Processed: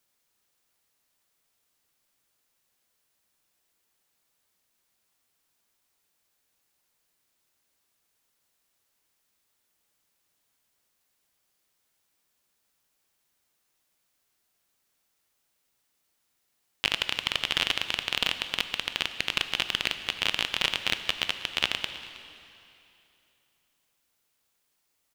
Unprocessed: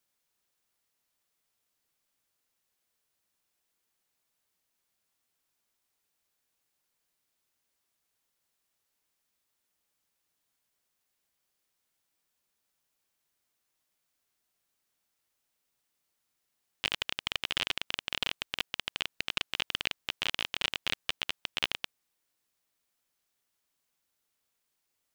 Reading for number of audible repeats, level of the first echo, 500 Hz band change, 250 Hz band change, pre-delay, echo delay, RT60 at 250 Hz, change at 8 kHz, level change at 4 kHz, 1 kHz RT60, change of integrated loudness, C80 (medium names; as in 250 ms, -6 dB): 1, -20.0 dB, +5.5 dB, +5.5 dB, 15 ms, 318 ms, 3.0 s, +5.5 dB, +5.5 dB, 2.9 s, +5.5 dB, 10.5 dB